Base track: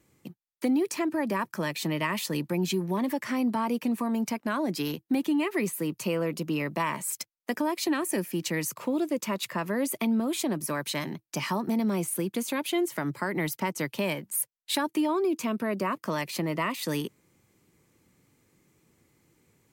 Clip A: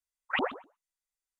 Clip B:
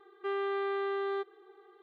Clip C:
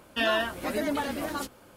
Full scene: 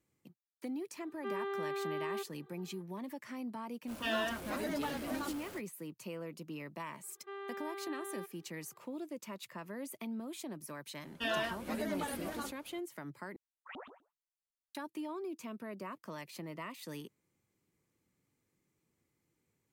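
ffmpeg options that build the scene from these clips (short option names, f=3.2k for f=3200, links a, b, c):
-filter_complex "[2:a]asplit=2[a][b];[3:a]asplit=2[c][d];[0:a]volume=-15dB[e];[c]aeval=exprs='val(0)+0.5*0.0168*sgn(val(0))':c=same[f];[b]lowshelf=f=400:g=-6[g];[1:a]alimiter=level_in=4dB:limit=-24dB:level=0:latency=1:release=69,volume=-4dB[h];[e]asplit=2[i][j];[i]atrim=end=13.364[k];[h]atrim=end=1.39,asetpts=PTS-STARTPTS,volume=-11.5dB[l];[j]atrim=start=14.746[m];[a]atrim=end=1.82,asetpts=PTS-STARTPTS,volume=-5.5dB,afade=t=in:d=0.004:c=hsin,afade=t=out:st=1.816:d=0.004:c=hsin,adelay=1000[n];[f]atrim=end=1.76,asetpts=PTS-STARTPTS,volume=-10dB,afade=t=in:d=0.05,afade=t=out:st=1.71:d=0.05,adelay=3860[o];[g]atrim=end=1.82,asetpts=PTS-STARTPTS,volume=-9.5dB,afade=t=in:d=0.004:c=hsin,afade=t=out:st=1.816:d=0.004:c=hsin,adelay=7030[p];[d]atrim=end=1.76,asetpts=PTS-STARTPTS,volume=-9dB,afade=t=in:d=0.004:c=hsin,afade=t=out:st=1.756:d=0.004:c=hsin,adelay=11040[q];[k][l]acrossfade=d=0.004:c1=hsin:c2=hsin[r];[r][m]acrossfade=d=0.004:c1=hsin:c2=hsin[s];[s][n][o][p][q]amix=inputs=5:normalize=0"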